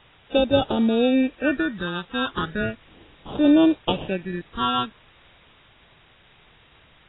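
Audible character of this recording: aliases and images of a low sample rate 2100 Hz, jitter 0%; phasing stages 6, 0.36 Hz, lowest notch 570–2000 Hz; a quantiser's noise floor 8-bit, dither triangular; AAC

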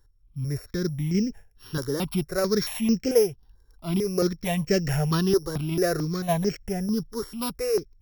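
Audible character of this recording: a buzz of ramps at a fixed pitch in blocks of 8 samples; random-step tremolo; notches that jump at a steady rate 4.5 Hz 690–3600 Hz

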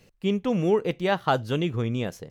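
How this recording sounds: noise floor -60 dBFS; spectral tilt -5.5 dB/oct

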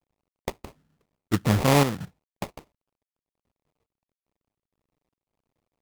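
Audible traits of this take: a quantiser's noise floor 12-bit, dither none; chopped level 1.5 Hz, depth 60%, duty 75%; aliases and images of a low sample rate 1600 Hz, jitter 20%; AAC

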